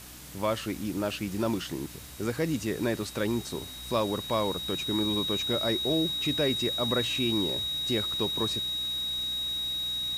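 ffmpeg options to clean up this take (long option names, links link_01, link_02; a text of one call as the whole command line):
ffmpeg -i in.wav -af "adeclick=threshold=4,bandreject=frequency=61.7:width_type=h:width=4,bandreject=frequency=123.4:width_type=h:width=4,bandreject=frequency=185.1:width_type=h:width=4,bandreject=frequency=246.8:width_type=h:width=4,bandreject=frequency=308.5:width_type=h:width=4,bandreject=frequency=3800:width=30,afwtdn=0.005" out.wav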